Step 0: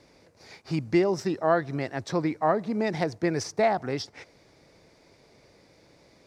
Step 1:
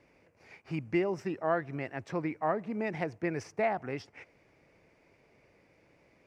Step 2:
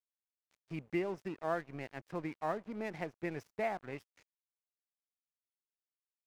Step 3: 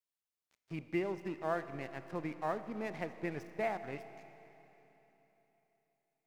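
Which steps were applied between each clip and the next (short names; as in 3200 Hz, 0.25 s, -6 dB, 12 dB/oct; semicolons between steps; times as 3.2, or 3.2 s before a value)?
resonant high shelf 3200 Hz -6 dB, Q 3; gain -7 dB
crossover distortion -46 dBFS; gain -5 dB
Schroeder reverb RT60 3.6 s, combs from 26 ms, DRR 11 dB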